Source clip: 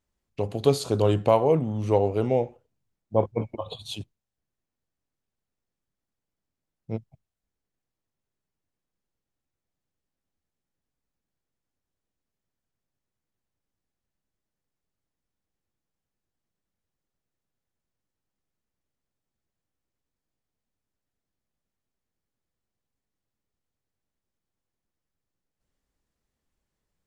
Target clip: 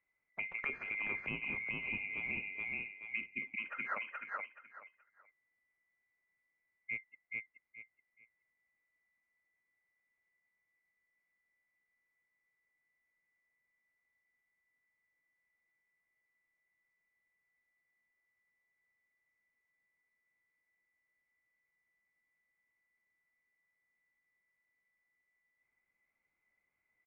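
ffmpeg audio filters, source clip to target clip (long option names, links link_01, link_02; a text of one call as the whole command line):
ffmpeg -i in.wav -filter_complex "[0:a]afftfilt=real='real(if(lt(b,920),b+92*(1-2*mod(floor(b/92),2)),b),0)':imag='imag(if(lt(b,920),b+92*(1-2*mod(floor(b/92),2)),b),0)':win_size=2048:overlap=0.75,aecho=1:1:426|852|1278:0.668|0.154|0.0354,acrossover=split=430[link_01][link_02];[link_02]acompressor=threshold=-29dB:ratio=6[link_03];[link_01][link_03]amix=inputs=2:normalize=0,lowpass=frequency=1800:width=0.5412,lowpass=frequency=1800:width=1.3066,volume=1.5dB" out.wav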